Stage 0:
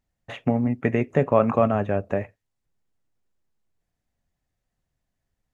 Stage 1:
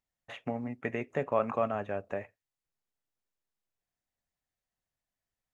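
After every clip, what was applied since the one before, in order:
low-shelf EQ 360 Hz −11 dB
level −6.5 dB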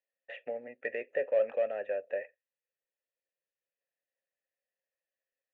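mid-hump overdrive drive 13 dB, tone 2,500 Hz, clips at −14.5 dBFS
formant filter e
level +4.5 dB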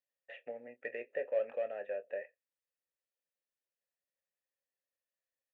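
double-tracking delay 25 ms −12 dB
level −5.5 dB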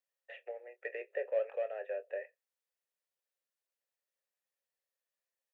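elliptic high-pass filter 380 Hz, stop band 40 dB
level +1 dB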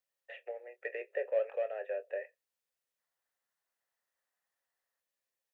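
gain on a spectral selection 0:02.99–0:05.00, 640–2,100 Hz +7 dB
level +1.5 dB

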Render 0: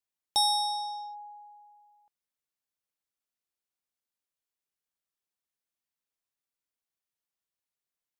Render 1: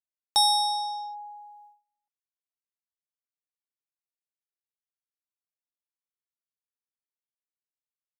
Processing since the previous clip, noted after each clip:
noise gate −57 dBFS, range −27 dB
level +4 dB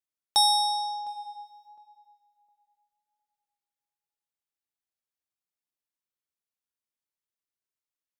tape delay 709 ms, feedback 23%, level −16 dB, low-pass 1,000 Hz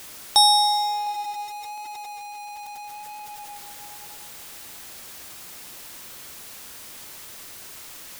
converter with a step at zero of −36.5 dBFS
level +5 dB

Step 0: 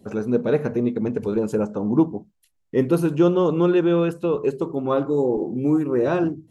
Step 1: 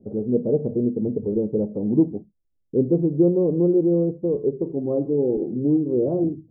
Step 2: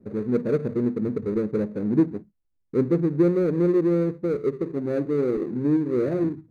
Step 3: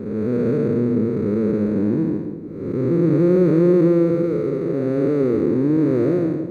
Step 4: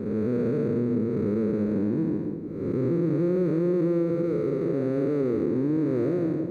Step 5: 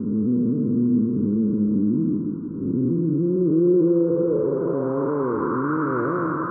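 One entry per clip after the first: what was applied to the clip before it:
inverse Chebyshev low-pass filter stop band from 1,900 Hz, stop band 60 dB
running median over 41 samples; level −1.5 dB
spectrum smeared in time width 399 ms; bucket-brigade delay 172 ms, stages 1,024, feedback 63%, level −12 dB; level +8 dB
downward compressor 4 to 1, threshold −20 dBFS, peak gain reduction 8 dB; level −2 dB
noise in a band 950–1,500 Hz −36 dBFS; low-pass filter sweep 260 Hz → 1,300 Hz, 0:03.15–0:05.72

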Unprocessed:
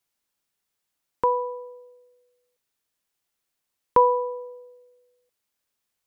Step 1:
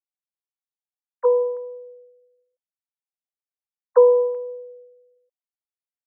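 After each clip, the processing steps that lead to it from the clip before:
three sine waves on the formant tracks
resonant band-pass 480 Hz, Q 2.2
level +6 dB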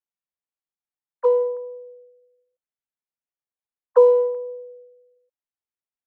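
adaptive Wiener filter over 9 samples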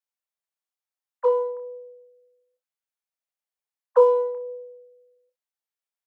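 Butterworth high-pass 480 Hz
on a send: ambience of single reflections 28 ms −7.5 dB, 62 ms −15.5 dB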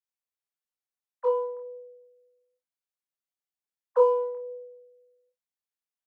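double-tracking delay 24 ms −3.5 dB
level −7 dB

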